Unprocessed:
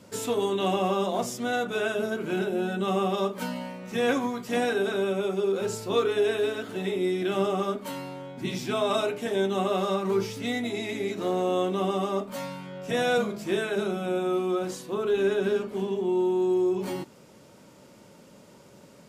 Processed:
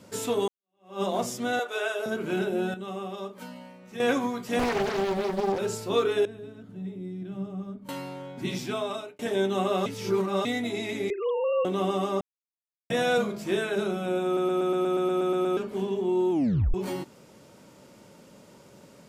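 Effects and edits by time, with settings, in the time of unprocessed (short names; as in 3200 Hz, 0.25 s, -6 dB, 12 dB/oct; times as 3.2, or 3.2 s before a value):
0.48–1.02 fade in exponential
1.59–2.06 HPF 450 Hz 24 dB/oct
2.74–4 gain -9.5 dB
4.59–5.59 Doppler distortion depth 0.85 ms
6.25–7.89 EQ curve 180 Hz 0 dB, 370 Hz -16 dB, 2700 Hz -23 dB
8.56–9.19 fade out
9.86–10.45 reverse
11.1–11.65 sine-wave speech
12.21–12.9 mute
14.25 stutter in place 0.12 s, 11 plays
16.31 tape stop 0.43 s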